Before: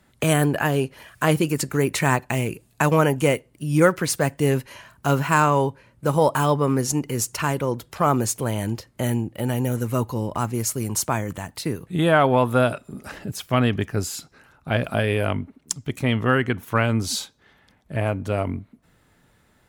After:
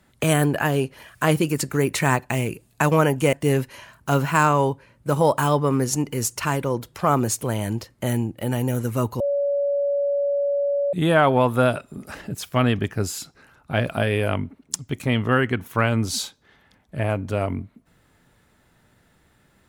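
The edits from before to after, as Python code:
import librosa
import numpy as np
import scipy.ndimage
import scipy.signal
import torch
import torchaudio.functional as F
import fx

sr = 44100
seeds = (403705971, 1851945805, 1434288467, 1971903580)

y = fx.edit(x, sr, fx.cut(start_s=3.33, length_s=0.97),
    fx.bleep(start_s=10.17, length_s=1.73, hz=567.0, db=-19.0), tone=tone)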